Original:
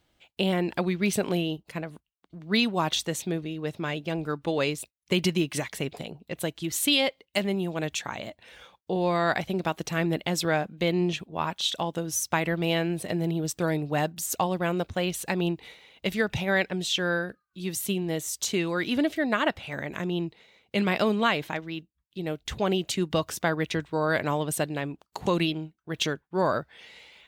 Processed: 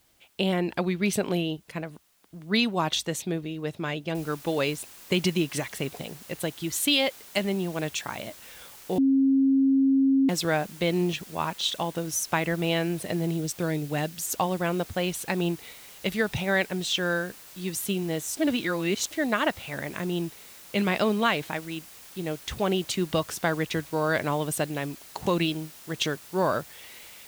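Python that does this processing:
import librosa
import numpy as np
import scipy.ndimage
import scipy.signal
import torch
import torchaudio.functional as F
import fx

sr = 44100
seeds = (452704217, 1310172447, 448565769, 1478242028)

y = fx.noise_floor_step(x, sr, seeds[0], at_s=4.15, before_db=-66, after_db=-48, tilt_db=0.0)
y = fx.dynamic_eq(y, sr, hz=920.0, q=1.0, threshold_db=-41.0, ratio=4.0, max_db=-6, at=(13.32, 14.27))
y = fx.edit(y, sr, fx.bleep(start_s=8.98, length_s=1.31, hz=270.0, db=-17.5),
    fx.reverse_span(start_s=18.37, length_s=0.74), tone=tone)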